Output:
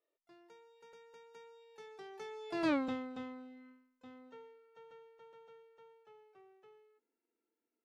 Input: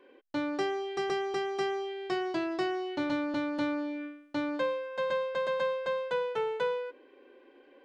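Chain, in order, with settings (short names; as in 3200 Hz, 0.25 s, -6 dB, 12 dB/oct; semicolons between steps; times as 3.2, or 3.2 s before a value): Doppler pass-by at 2.72, 52 m/s, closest 4.1 m; harmoniser +12 st -18 dB; gain +1 dB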